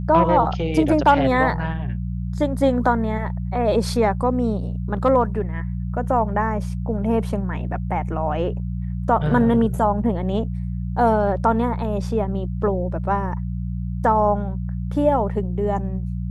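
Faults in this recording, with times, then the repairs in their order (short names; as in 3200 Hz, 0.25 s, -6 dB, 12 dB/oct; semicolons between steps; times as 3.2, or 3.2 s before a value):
hum 60 Hz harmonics 3 -26 dBFS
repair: de-hum 60 Hz, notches 3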